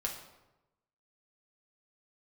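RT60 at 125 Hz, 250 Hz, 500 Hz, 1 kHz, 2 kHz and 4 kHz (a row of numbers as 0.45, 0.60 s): 1.2, 1.0, 1.0, 0.95, 0.80, 0.65 s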